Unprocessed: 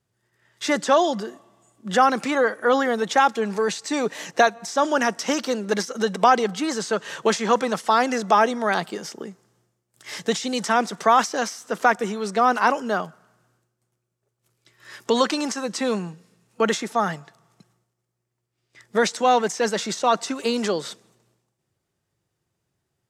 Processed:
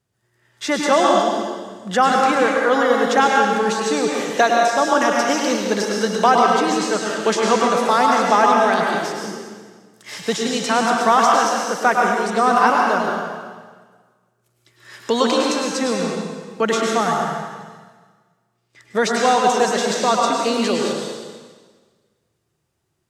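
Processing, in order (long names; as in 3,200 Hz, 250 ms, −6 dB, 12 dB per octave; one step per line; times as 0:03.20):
dense smooth reverb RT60 1.5 s, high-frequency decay 0.95×, pre-delay 90 ms, DRR −1.5 dB
level +1 dB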